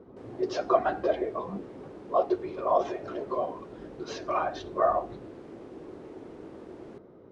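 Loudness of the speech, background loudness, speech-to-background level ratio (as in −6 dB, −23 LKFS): −29.5 LKFS, −46.5 LKFS, 17.0 dB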